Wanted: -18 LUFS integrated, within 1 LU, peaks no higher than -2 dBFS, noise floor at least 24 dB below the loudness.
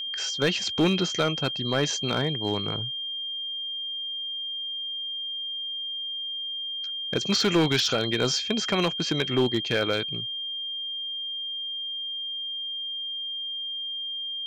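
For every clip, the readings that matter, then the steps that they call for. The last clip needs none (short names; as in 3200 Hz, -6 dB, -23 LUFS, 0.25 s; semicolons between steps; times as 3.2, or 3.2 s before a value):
clipped 0.3%; flat tops at -16.0 dBFS; steady tone 3200 Hz; tone level -30 dBFS; loudness -27.0 LUFS; peak -16.0 dBFS; loudness target -18.0 LUFS
-> clip repair -16 dBFS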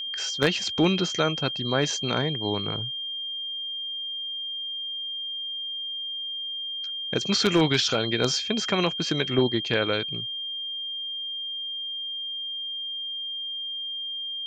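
clipped 0.0%; steady tone 3200 Hz; tone level -30 dBFS
-> notch 3200 Hz, Q 30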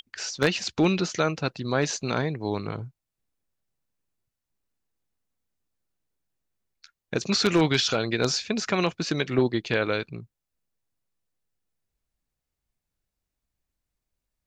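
steady tone none; loudness -25.5 LUFS; peak -6.5 dBFS; loudness target -18.0 LUFS
-> gain +7.5 dB; limiter -2 dBFS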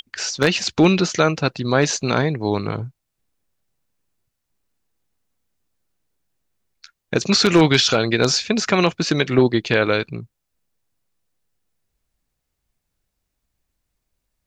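loudness -18.5 LUFS; peak -2.0 dBFS; noise floor -78 dBFS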